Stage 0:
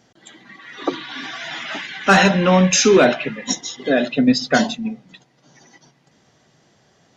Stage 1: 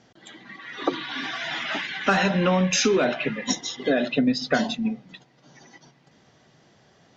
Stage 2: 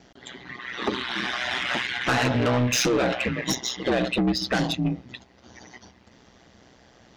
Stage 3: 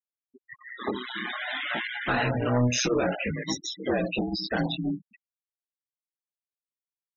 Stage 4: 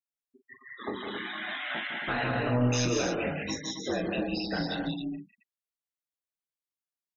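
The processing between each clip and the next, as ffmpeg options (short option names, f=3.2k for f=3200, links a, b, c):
-af "lowpass=5.7k,acompressor=threshold=-18dB:ratio=6"
-af "aeval=exprs='val(0)*sin(2*PI*62*n/s)':c=same,asoftclip=type=tanh:threshold=-24dB,volume=6.5dB"
-af "flanger=delay=18.5:depth=5.9:speed=0.56,afftfilt=real='re*gte(hypot(re,im),0.0447)':imag='im*gte(hypot(re,im),0.0447)':win_size=1024:overlap=0.75"
-af "aecho=1:1:40.82|154.5|189.5|271.1:0.355|0.398|0.562|0.447,volume=-5.5dB"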